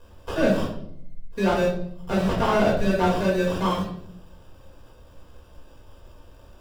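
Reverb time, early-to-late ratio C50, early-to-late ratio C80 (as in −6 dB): 0.70 s, 5.0 dB, 9.0 dB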